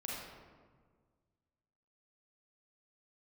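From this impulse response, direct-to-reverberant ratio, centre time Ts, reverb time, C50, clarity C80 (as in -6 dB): -5.0 dB, 98 ms, 1.6 s, -2.0 dB, 1.0 dB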